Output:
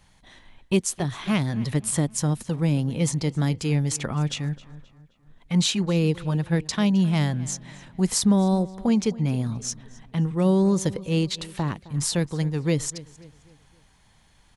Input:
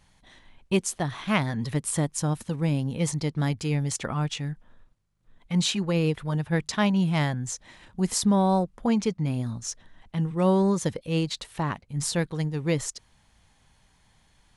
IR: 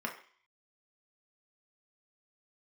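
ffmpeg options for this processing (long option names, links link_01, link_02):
-filter_complex "[0:a]acrossover=split=480|3000[link_01][link_02][link_03];[link_02]acompressor=threshold=-37dB:ratio=3[link_04];[link_01][link_04][link_03]amix=inputs=3:normalize=0,asplit=2[link_05][link_06];[link_06]adelay=263,lowpass=frequency=4500:poles=1,volume=-19dB,asplit=2[link_07][link_08];[link_08]adelay=263,lowpass=frequency=4500:poles=1,volume=0.45,asplit=2[link_09][link_10];[link_10]adelay=263,lowpass=frequency=4500:poles=1,volume=0.45,asplit=2[link_11][link_12];[link_12]adelay=263,lowpass=frequency=4500:poles=1,volume=0.45[link_13];[link_05][link_07][link_09][link_11][link_13]amix=inputs=5:normalize=0,volume=3dB"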